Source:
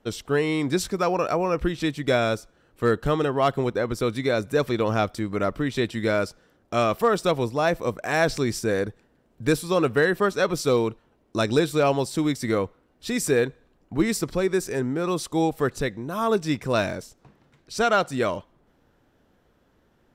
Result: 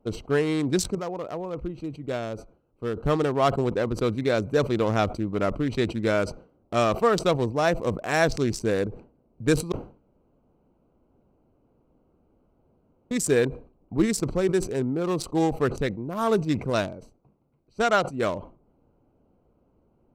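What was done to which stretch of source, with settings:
0.95–2.97 s: gain -7.5 dB
9.72–13.11 s: room tone
16.70–18.23 s: upward expansion, over -34 dBFS
whole clip: local Wiener filter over 25 samples; dynamic bell 7.2 kHz, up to +5 dB, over -49 dBFS, Q 1.2; decay stretcher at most 140 dB/s

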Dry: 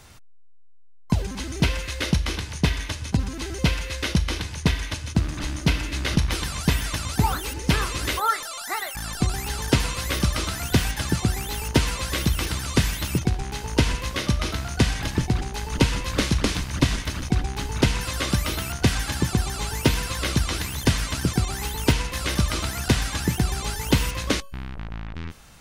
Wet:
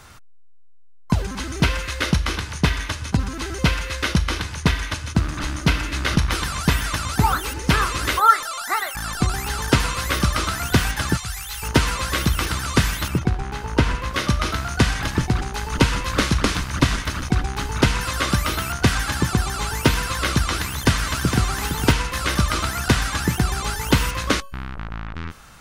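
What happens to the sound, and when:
11.17–11.63 s: amplifier tone stack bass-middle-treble 10-0-10
13.08–14.14 s: treble shelf 3.4 kHz -9.5 dB
20.57–21.45 s: echo throw 460 ms, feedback 15%, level -7.5 dB
whole clip: peaking EQ 1.3 kHz +7.5 dB 0.84 oct; trim +2 dB

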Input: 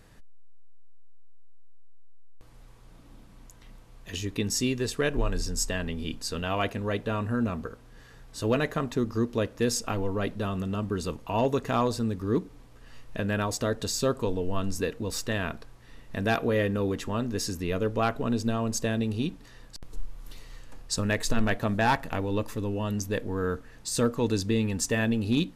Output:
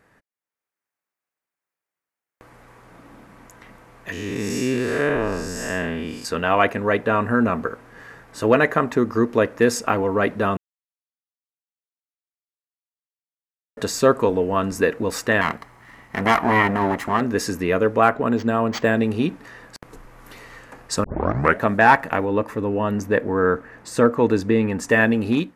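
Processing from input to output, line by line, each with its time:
4.12–6.25 s: spectral blur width 225 ms
10.57–13.77 s: mute
15.41–17.21 s: comb filter that takes the minimum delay 0.97 ms
18.03–18.96 s: decimation joined by straight lines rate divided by 4×
21.04 s: tape start 0.57 s
22.25–24.89 s: treble shelf 2.9 kHz -8 dB
whole clip: high-pass 330 Hz 6 dB/octave; resonant high shelf 2.6 kHz -8.5 dB, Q 1.5; level rider gain up to 12 dB; trim +1 dB

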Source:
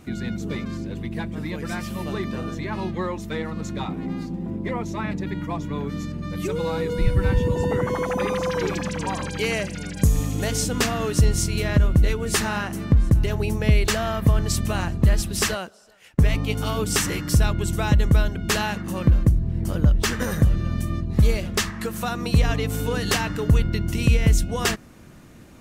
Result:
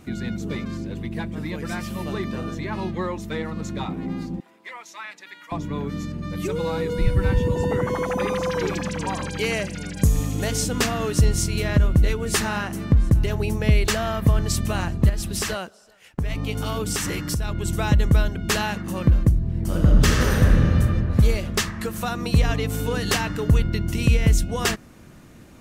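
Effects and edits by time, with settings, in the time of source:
4.40–5.52 s: high-pass 1.4 kHz
15.09–17.65 s: compression, threshold -21 dBFS
19.65–20.73 s: reverb throw, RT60 2.8 s, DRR -1.5 dB

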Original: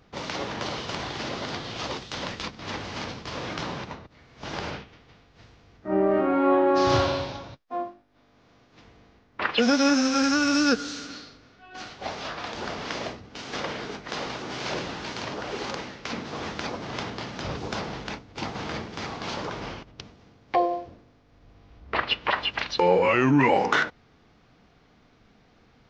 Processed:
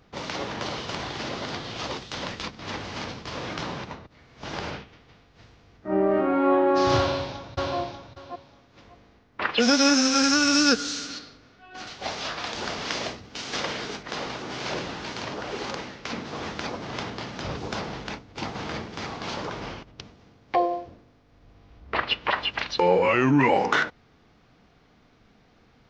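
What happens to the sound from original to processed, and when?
6.98–7.76 s: echo throw 590 ms, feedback 15%, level -4 dB
9.60–11.19 s: treble shelf 3.2 kHz +9 dB
11.87–14.03 s: treble shelf 2.7 kHz +8 dB

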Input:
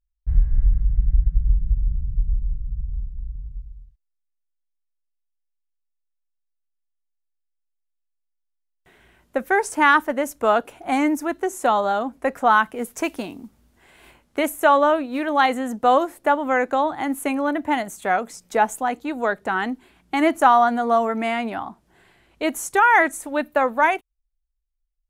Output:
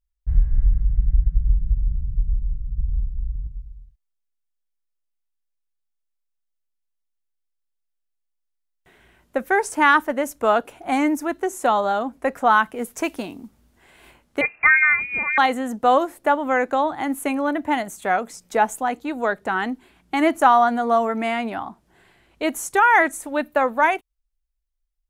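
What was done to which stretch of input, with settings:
2.78–3.47 s: comb 1.2 ms, depth 73%
14.41–15.38 s: frequency inversion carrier 2.7 kHz

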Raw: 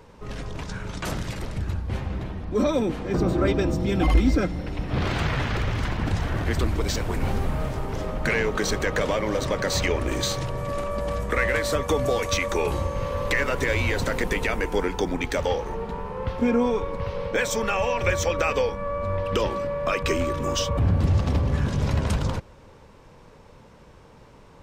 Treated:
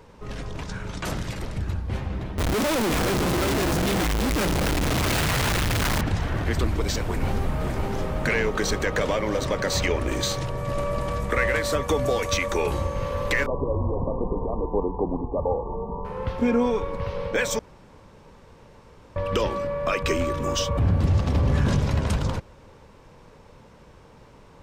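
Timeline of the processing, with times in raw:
2.38–6.01 s: one-bit comparator
7.04–7.71 s: echo throw 560 ms, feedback 35%, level -4.5 dB
10.44–10.88 s: echo throw 230 ms, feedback 70%, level -5.5 dB
13.46–16.05 s: brick-wall FIR low-pass 1.2 kHz
17.59–19.16 s: room tone
21.36–21.80 s: level flattener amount 70%

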